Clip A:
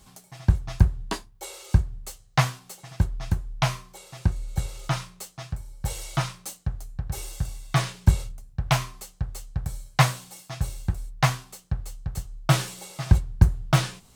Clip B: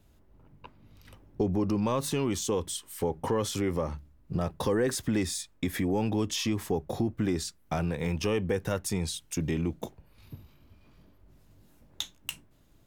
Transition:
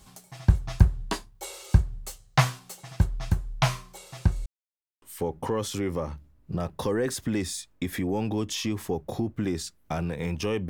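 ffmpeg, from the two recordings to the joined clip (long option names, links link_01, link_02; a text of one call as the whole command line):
ffmpeg -i cue0.wav -i cue1.wav -filter_complex "[0:a]apad=whole_dur=10.69,atrim=end=10.69,asplit=2[link_01][link_02];[link_01]atrim=end=4.46,asetpts=PTS-STARTPTS,afade=type=out:start_time=4.456:duration=0.004:curve=hsin[link_03];[link_02]atrim=start=4.46:end=5.02,asetpts=PTS-STARTPTS,volume=0[link_04];[1:a]atrim=start=2.83:end=8.5,asetpts=PTS-STARTPTS,afade=type=in:duration=0.004:curve=hsin[link_05];[link_03][link_04][link_05]concat=n=3:v=0:a=1" out.wav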